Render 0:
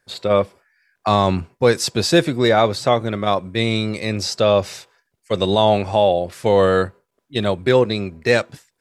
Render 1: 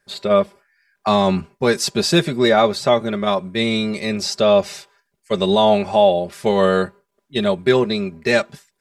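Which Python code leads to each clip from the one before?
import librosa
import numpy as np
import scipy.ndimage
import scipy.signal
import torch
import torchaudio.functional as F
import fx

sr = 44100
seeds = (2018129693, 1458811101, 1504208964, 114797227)

y = x + 0.67 * np.pad(x, (int(5.0 * sr / 1000.0), 0))[:len(x)]
y = F.gain(torch.from_numpy(y), -1.0).numpy()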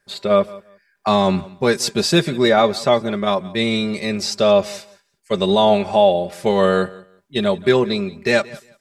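y = fx.echo_feedback(x, sr, ms=176, feedback_pct=19, wet_db=-21)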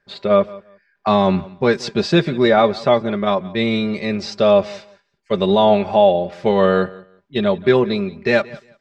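y = fx.air_absorb(x, sr, metres=180.0)
y = F.gain(torch.from_numpy(y), 1.5).numpy()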